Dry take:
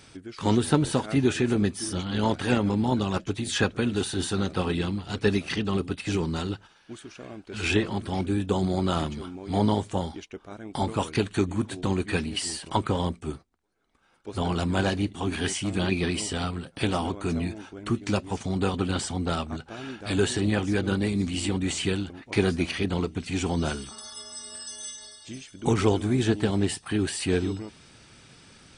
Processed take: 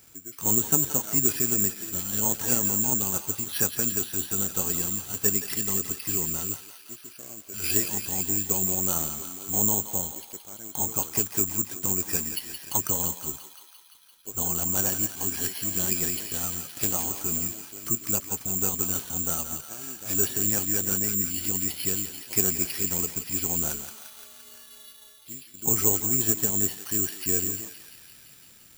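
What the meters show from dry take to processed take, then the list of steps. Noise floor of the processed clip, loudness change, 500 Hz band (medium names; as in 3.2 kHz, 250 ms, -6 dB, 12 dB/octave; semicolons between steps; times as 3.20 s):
-52 dBFS, +3.0 dB, -8.5 dB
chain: thinning echo 172 ms, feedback 82%, high-pass 1 kHz, level -7 dB; careless resampling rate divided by 6×, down filtered, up zero stuff; trim -8.5 dB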